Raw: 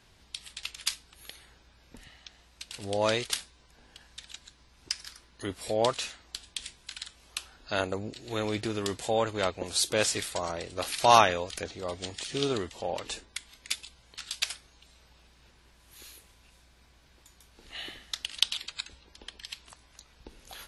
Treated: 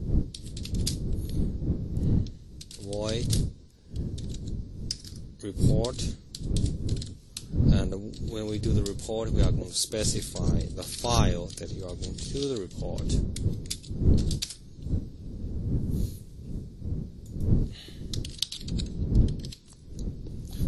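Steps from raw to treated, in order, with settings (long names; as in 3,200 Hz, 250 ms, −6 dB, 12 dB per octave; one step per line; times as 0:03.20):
wind on the microphone 140 Hz −29 dBFS
flat-topped bell 1,400 Hz −12 dB 2.6 octaves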